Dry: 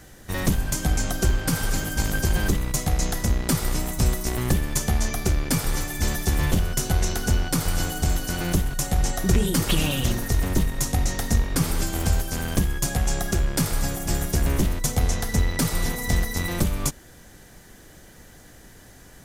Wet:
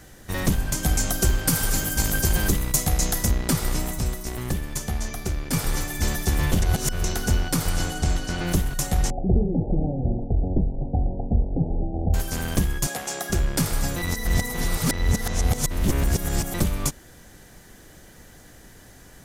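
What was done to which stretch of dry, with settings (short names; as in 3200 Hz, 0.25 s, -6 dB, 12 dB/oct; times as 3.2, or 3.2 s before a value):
0.83–3.31 high shelf 6900 Hz +9.5 dB
3.99–5.53 gain -5 dB
6.62–7.04 reverse
7.69–8.46 LPF 12000 Hz -> 5200 Hz
9.1–12.14 steep low-pass 820 Hz 96 dB/oct
12.87–13.3 HPF 340 Hz
13.96–16.54 reverse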